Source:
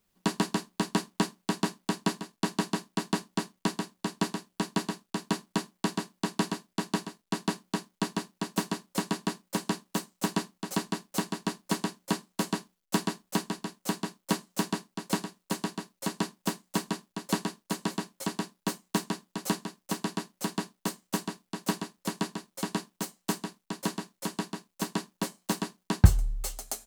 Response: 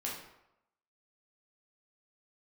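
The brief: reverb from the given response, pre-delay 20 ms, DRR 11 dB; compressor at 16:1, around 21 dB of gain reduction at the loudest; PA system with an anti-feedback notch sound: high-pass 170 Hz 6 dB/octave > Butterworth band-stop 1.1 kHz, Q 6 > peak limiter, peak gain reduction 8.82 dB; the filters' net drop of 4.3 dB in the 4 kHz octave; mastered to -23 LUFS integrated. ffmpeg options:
-filter_complex "[0:a]equalizer=f=4000:t=o:g=-5.5,acompressor=threshold=0.0282:ratio=16,asplit=2[s0][s1];[1:a]atrim=start_sample=2205,adelay=20[s2];[s1][s2]afir=irnorm=-1:irlink=0,volume=0.224[s3];[s0][s3]amix=inputs=2:normalize=0,highpass=f=170:p=1,asuperstop=centerf=1100:order=8:qfactor=6,volume=11.2,alimiter=limit=0.447:level=0:latency=1"

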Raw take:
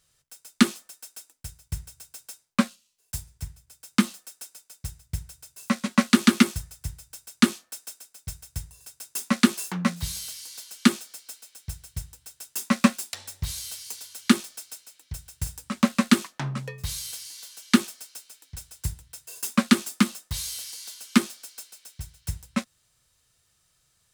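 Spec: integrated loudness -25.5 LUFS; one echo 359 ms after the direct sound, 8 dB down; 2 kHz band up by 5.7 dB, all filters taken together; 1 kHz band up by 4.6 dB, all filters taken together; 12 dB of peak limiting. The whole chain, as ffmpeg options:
-af "equalizer=f=1000:t=o:g=3.5,equalizer=f=2000:t=o:g=6,alimiter=limit=0.211:level=0:latency=1,aecho=1:1:359:0.398,volume=2.24"

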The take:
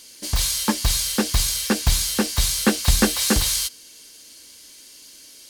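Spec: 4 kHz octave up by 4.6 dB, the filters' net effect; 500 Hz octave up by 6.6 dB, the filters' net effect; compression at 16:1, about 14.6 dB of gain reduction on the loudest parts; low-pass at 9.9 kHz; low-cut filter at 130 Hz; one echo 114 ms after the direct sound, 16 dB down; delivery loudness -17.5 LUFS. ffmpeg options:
-af "highpass=130,lowpass=9900,equalizer=f=500:t=o:g=8,equalizer=f=4000:t=o:g=5.5,acompressor=threshold=0.0631:ratio=16,aecho=1:1:114:0.158,volume=2.82"

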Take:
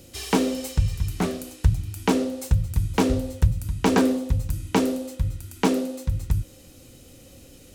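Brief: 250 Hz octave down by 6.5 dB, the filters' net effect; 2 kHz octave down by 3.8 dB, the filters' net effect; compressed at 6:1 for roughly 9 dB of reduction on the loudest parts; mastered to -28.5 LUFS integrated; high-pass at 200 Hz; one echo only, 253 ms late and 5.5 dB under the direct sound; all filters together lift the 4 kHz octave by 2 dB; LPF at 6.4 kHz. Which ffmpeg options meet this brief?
-af "highpass=200,lowpass=6400,equalizer=f=250:t=o:g=-5.5,equalizer=f=2000:t=o:g=-6.5,equalizer=f=4000:t=o:g=5.5,acompressor=threshold=0.0398:ratio=6,aecho=1:1:253:0.531,volume=2"

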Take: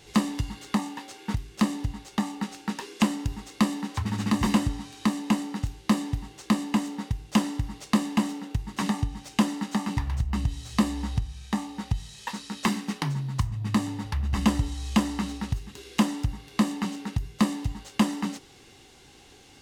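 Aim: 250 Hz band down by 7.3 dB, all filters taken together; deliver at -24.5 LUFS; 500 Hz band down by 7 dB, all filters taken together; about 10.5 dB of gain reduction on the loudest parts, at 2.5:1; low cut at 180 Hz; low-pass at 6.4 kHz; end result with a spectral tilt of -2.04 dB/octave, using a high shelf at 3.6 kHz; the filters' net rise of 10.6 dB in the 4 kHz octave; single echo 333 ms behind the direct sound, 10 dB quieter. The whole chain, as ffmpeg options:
-af "highpass=180,lowpass=6400,equalizer=f=250:t=o:g=-5.5,equalizer=f=500:t=o:g=-8,highshelf=f=3600:g=9,equalizer=f=4000:t=o:g=8.5,acompressor=threshold=0.0141:ratio=2.5,aecho=1:1:333:0.316,volume=4.22"

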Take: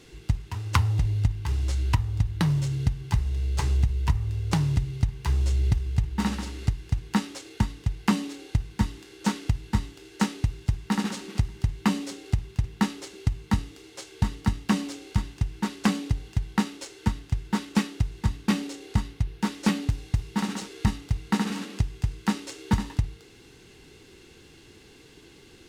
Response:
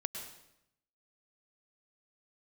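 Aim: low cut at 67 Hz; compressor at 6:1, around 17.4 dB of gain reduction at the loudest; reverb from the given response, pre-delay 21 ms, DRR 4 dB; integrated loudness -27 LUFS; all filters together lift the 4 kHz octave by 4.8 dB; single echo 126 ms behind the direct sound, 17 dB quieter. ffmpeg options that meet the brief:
-filter_complex "[0:a]highpass=67,equalizer=f=4000:t=o:g=6,acompressor=threshold=0.0126:ratio=6,aecho=1:1:126:0.141,asplit=2[s0][s1];[1:a]atrim=start_sample=2205,adelay=21[s2];[s1][s2]afir=irnorm=-1:irlink=0,volume=0.596[s3];[s0][s3]amix=inputs=2:normalize=0,volume=5.31"

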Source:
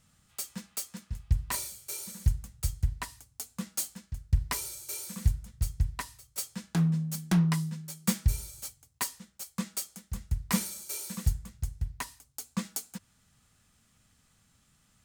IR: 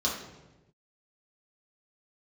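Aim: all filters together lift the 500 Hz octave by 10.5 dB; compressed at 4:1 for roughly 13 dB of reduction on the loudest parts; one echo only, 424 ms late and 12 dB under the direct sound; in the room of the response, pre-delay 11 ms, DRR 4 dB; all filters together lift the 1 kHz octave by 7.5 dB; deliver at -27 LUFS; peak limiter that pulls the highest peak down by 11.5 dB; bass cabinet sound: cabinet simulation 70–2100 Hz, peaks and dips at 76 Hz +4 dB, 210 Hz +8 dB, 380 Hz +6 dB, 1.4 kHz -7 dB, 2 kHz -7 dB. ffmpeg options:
-filter_complex "[0:a]equalizer=f=500:t=o:g=8.5,equalizer=f=1000:t=o:g=7.5,acompressor=threshold=0.0178:ratio=4,alimiter=level_in=1.68:limit=0.0631:level=0:latency=1,volume=0.596,aecho=1:1:424:0.251,asplit=2[s0][s1];[1:a]atrim=start_sample=2205,adelay=11[s2];[s1][s2]afir=irnorm=-1:irlink=0,volume=0.237[s3];[s0][s3]amix=inputs=2:normalize=0,highpass=f=70:w=0.5412,highpass=f=70:w=1.3066,equalizer=f=76:t=q:w=4:g=4,equalizer=f=210:t=q:w=4:g=8,equalizer=f=380:t=q:w=4:g=6,equalizer=f=1400:t=q:w=4:g=-7,equalizer=f=2000:t=q:w=4:g=-7,lowpass=f=2100:w=0.5412,lowpass=f=2100:w=1.3066,volume=4.47"

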